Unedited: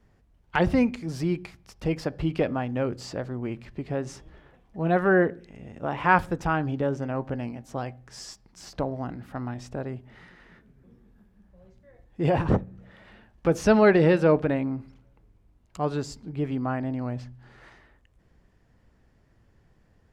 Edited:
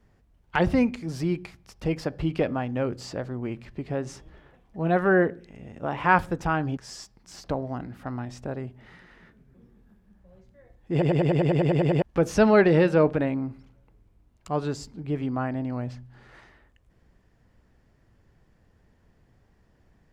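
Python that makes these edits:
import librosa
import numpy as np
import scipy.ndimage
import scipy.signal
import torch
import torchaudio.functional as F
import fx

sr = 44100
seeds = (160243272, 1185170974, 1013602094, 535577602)

y = fx.edit(x, sr, fx.cut(start_s=6.77, length_s=1.29),
    fx.stutter_over(start_s=12.21, slice_s=0.1, count=11), tone=tone)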